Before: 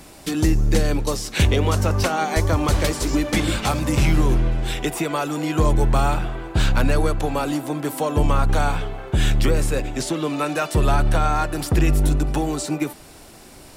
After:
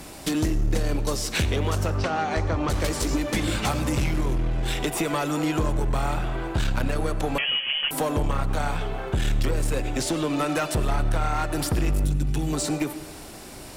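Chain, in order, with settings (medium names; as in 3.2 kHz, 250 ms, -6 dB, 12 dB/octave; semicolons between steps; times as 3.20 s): 12.04–12.53 s: ten-band graphic EQ 125 Hz +6 dB, 500 Hz -10 dB, 1 kHz -10 dB; compression 3:1, threshold -25 dBFS, peak gain reduction 9.5 dB; one-sided clip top -25 dBFS; 1.90–2.70 s: distance through air 110 m; reverberation RT60 1.1 s, pre-delay 55 ms, DRR 13.5 dB; 7.38–7.91 s: frequency inversion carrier 3.2 kHz; trim +3 dB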